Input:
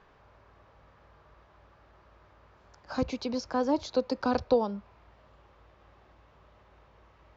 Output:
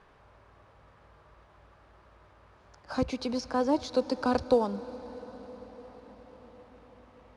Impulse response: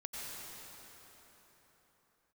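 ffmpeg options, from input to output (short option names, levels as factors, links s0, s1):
-filter_complex "[0:a]asplit=2[s0][s1];[1:a]atrim=start_sample=2205,asetrate=24696,aresample=44100[s2];[s1][s2]afir=irnorm=-1:irlink=0,volume=0.119[s3];[s0][s3]amix=inputs=2:normalize=0" -ar 22050 -c:a adpcm_ima_wav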